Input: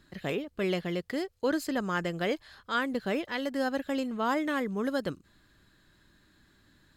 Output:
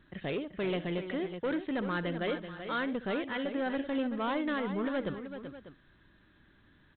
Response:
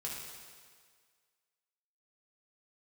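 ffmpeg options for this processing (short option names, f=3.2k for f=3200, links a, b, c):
-af "aresample=8000,asoftclip=type=tanh:threshold=-27.5dB,aresample=44100,aecho=1:1:63|382|595:0.141|0.335|0.178"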